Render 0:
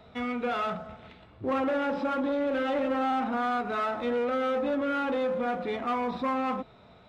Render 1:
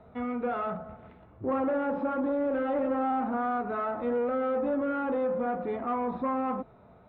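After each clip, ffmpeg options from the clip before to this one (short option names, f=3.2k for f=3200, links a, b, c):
-af "lowpass=1.3k"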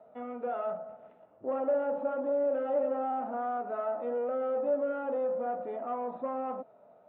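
-af "highpass=330,equalizer=f=360:t=q:w=4:g=-6,equalizer=f=610:t=q:w=4:g=9,equalizer=f=1.1k:t=q:w=4:g=-6,equalizer=f=1.6k:t=q:w=4:g=-5,equalizer=f=2.2k:t=q:w=4:g=-9,lowpass=f=2.9k:w=0.5412,lowpass=f=2.9k:w=1.3066,volume=-3.5dB"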